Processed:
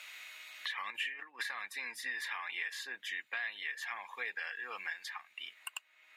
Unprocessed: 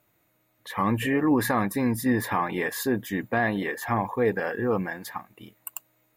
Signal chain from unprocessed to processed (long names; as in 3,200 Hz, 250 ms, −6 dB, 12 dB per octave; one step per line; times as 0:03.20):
0:00.89–0:01.43: compressor whose output falls as the input rises −25 dBFS, ratio −0.5
four-pole ladder band-pass 3,200 Hz, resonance 30%
multiband upward and downward compressor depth 100%
level +8 dB